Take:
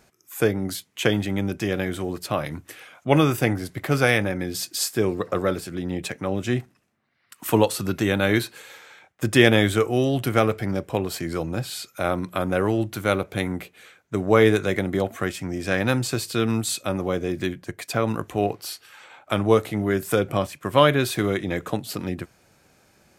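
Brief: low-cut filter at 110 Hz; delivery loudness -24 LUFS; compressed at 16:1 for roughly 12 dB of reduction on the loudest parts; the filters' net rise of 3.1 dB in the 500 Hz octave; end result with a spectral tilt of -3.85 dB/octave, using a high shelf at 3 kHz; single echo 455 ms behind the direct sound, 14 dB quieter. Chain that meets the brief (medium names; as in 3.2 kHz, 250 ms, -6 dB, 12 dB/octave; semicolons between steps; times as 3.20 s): high-pass 110 Hz; peaking EQ 500 Hz +3.5 dB; treble shelf 3 kHz +9 dB; compression 16:1, threshold -20 dBFS; delay 455 ms -14 dB; trim +2.5 dB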